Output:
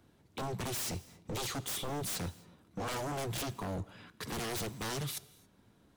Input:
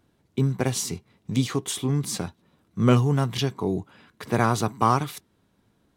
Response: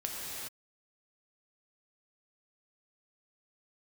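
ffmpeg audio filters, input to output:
-filter_complex "[0:a]acrossover=split=150|3000[a][b][c];[b]acompressor=threshold=-42dB:ratio=2[d];[a][d][c]amix=inputs=3:normalize=0,aeval=exprs='0.0237*(abs(mod(val(0)/0.0237+3,4)-2)-1)':c=same,asplit=2[e][f];[1:a]atrim=start_sample=2205,asetrate=66150,aresample=44100[g];[f][g]afir=irnorm=-1:irlink=0,volume=-16.5dB[h];[e][h]amix=inputs=2:normalize=0"

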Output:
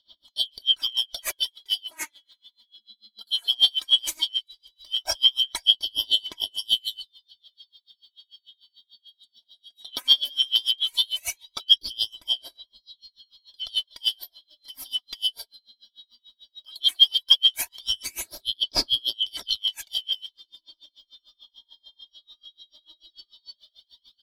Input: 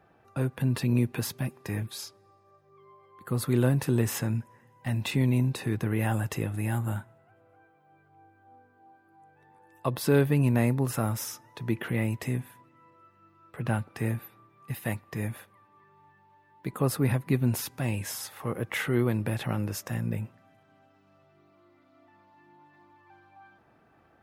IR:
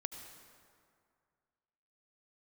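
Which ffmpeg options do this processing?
-filter_complex "[0:a]afftfilt=real='real(if(lt(b,272),68*(eq(floor(b/68),0)*2+eq(floor(b/68),1)*3+eq(floor(b/68),2)*0+eq(floor(b/68),3)*1)+mod(b,68),b),0)':imag='imag(if(lt(b,272),68*(eq(floor(b/68),0)*2+eq(floor(b/68),1)*3+eq(floor(b/68),2)*0+eq(floor(b/68),3)*1)+mod(b,68),b),0)':win_size=2048:overlap=0.75,aecho=1:1:3.1:0.67,aphaser=in_gain=1:out_gain=1:delay=4.4:decay=0.62:speed=0.16:type=sinusoidal,asplit=2[a][b];[b]acompressor=threshold=-38dB:ratio=10,volume=-1dB[c];[a][c]amix=inputs=2:normalize=0,aeval=exprs='val(0)*pow(10,-32*(0.5-0.5*cos(2*PI*6.8*n/s))/20)':c=same,volume=5dB"

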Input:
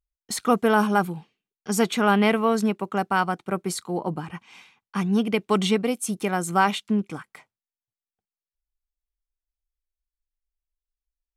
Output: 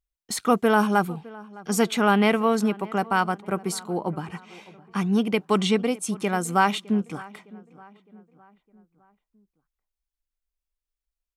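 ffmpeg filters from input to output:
-filter_complex "[0:a]asettb=1/sr,asplit=3[a][b][c];[a]atrim=end=5.614[d];[b]atrim=start=5.61:end=6.3,asetpts=PTS-STARTPTS,afade=t=in:d=0.004:c=qsin,afade=t=out:st=0.686:d=0.004:c=qsin,lowpass=10k[e];[c]atrim=start=6.296[f];[d][e]acrossfade=d=0.004:c1=hsin:c2=qsin[g];[g][f]acrossfade=d=0.004:c1=qsin:c2=hsin,asplit=2[h][i];[i]adelay=610,lowpass=f=2.2k:p=1,volume=-21dB,asplit=2[j][k];[k]adelay=610,lowpass=f=2.2k:p=1,volume=0.5,asplit=2[l][m];[m]adelay=610,lowpass=f=2.2k:p=1,volume=0.5,asplit=2[n][o];[o]adelay=610,lowpass=f=2.2k:p=1,volume=0.5[p];[j][l][n][p]amix=inputs=4:normalize=0[q];[h][q]amix=inputs=2:normalize=0"

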